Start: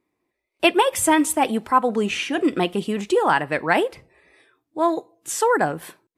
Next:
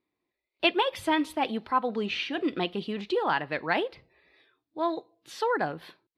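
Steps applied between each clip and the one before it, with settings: resonant high shelf 5700 Hz -11.5 dB, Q 3; gain -8.5 dB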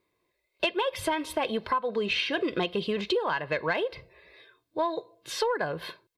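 comb 1.9 ms, depth 56%; compressor 10:1, threshold -31 dBFS, peak gain reduction 14.5 dB; soft clip -20.5 dBFS, distortion -28 dB; gain +7.5 dB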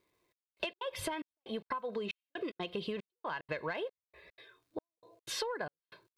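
compressor, threshold -32 dBFS, peak gain reduction 10 dB; crackle 440/s -67 dBFS; step gate "xxxx...xx.x" 185 bpm -60 dB; gain -2 dB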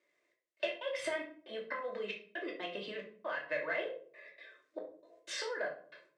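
speaker cabinet 410–8200 Hz, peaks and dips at 600 Hz +7 dB, 890 Hz -9 dB, 1900 Hz +10 dB, 4100 Hz -4 dB; shoebox room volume 430 m³, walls furnished, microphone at 2.6 m; gain -4 dB

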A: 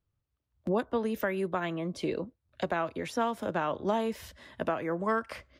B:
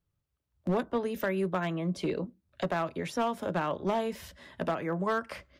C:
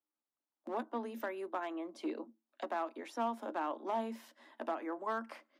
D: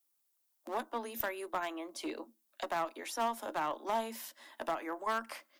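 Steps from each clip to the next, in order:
on a send at -15 dB: reverb RT60 0.15 s, pre-delay 3 ms; on the sum: hard clip -22.5 dBFS, distortion -17 dB
rippled Chebyshev high-pass 220 Hz, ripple 9 dB; gain -2.5 dB
RIAA curve recording; added harmonics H 4 -19 dB, 6 -29 dB, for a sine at -23 dBFS; gain +3 dB

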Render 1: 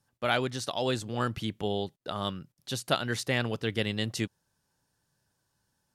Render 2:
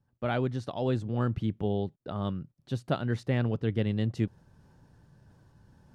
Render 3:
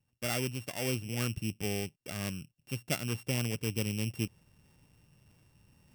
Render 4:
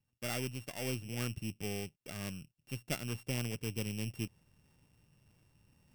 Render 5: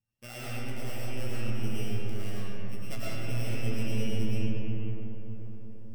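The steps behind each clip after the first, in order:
LPF 1300 Hz 6 dB/oct; low shelf 330 Hz +10.5 dB; reverse; upward compressor, threshold -39 dBFS; reverse; gain -3.5 dB
sample sorter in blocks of 16 samples; high shelf 3800 Hz +7.5 dB; gain -5.5 dB
half-wave gain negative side -3 dB; gain -3 dB
resonator 110 Hz, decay 0.21 s, harmonics all, mix 80%; digital reverb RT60 4.7 s, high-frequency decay 0.35×, pre-delay 70 ms, DRR -9.5 dB

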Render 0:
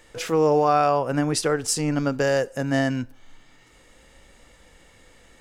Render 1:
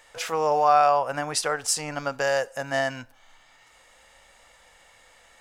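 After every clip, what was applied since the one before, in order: resonant low shelf 490 Hz -11.5 dB, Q 1.5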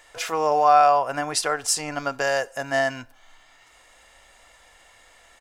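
comb 2.9 ms, depth 31%; gain +1.5 dB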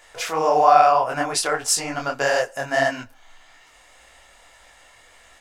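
detuned doubles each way 59 cents; gain +6 dB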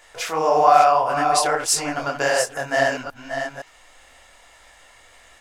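reverse delay 0.517 s, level -7 dB

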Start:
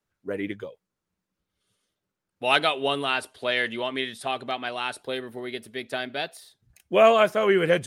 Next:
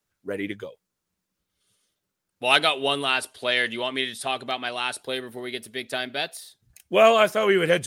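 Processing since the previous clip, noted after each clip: high shelf 3200 Hz +8 dB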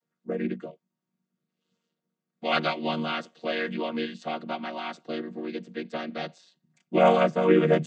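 chord vocoder minor triad, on D#3; gain -2 dB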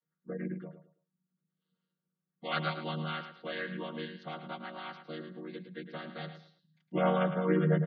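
speaker cabinet 110–4300 Hz, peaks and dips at 160 Hz +8 dB, 240 Hz -9 dB, 400 Hz -7 dB, 660 Hz -9 dB, 940 Hz -3 dB, 2500 Hz -9 dB; spectral gate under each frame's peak -30 dB strong; feedback echo 0.108 s, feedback 27%, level -10 dB; gain -5 dB

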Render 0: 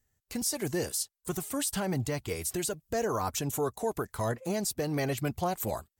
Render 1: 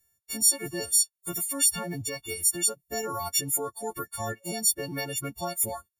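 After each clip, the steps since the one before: frequency quantiser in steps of 4 st; reverb removal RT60 1.1 s; gain -2.5 dB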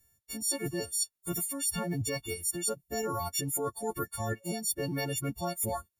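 low shelf 410 Hz +7.5 dB; reverse; compressor 6:1, threshold -31 dBFS, peak gain reduction 14 dB; reverse; gain +1.5 dB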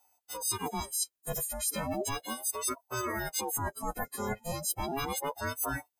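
ring modulator with a swept carrier 570 Hz, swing 45%, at 0.35 Hz; gain +2 dB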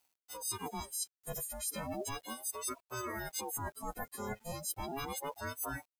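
requantised 10-bit, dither none; gain -6 dB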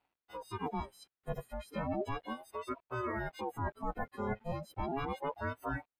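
air absorption 490 m; gain +5.5 dB

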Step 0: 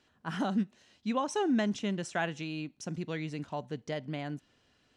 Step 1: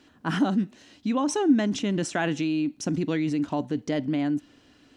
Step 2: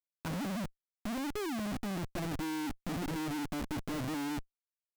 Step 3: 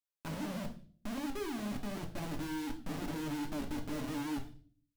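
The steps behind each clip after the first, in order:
bell 290 Hz +12.5 dB 0.41 oct; in parallel at 0 dB: negative-ratio compressor -34 dBFS, ratio -1
treble ducked by the level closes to 580 Hz, closed at -24.5 dBFS; Schmitt trigger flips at -37 dBFS; gain -8.5 dB
on a send at -2.5 dB: reverb RT60 0.45 s, pre-delay 3 ms; on the sum: record warp 78 rpm, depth 100 cents; gain -5 dB

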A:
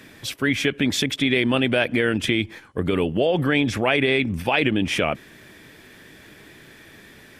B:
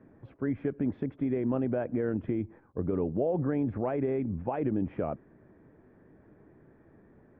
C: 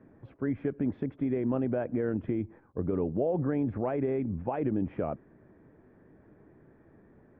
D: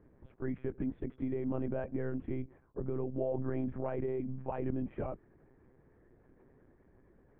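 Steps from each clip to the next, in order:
Bessel low-pass 780 Hz, order 4; gain -7 dB
nothing audible
monotone LPC vocoder at 8 kHz 130 Hz; gain -5.5 dB

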